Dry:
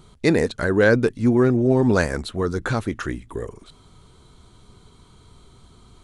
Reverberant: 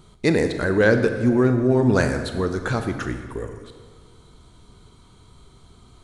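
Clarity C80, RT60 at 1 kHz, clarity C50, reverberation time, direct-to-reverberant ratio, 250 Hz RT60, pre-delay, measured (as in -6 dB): 9.0 dB, 1.6 s, 8.0 dB, 1.7 s, 7.0 dB, 2.0 s, 29 ms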